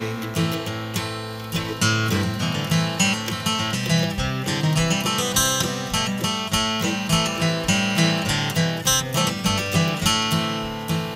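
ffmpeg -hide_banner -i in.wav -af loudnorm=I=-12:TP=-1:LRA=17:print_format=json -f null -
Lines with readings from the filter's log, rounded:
"input_i" : "-21.5",
"input_tp" : "-4.7",
"input_lra" : "1.6",
"input_thresh" : "-31.5",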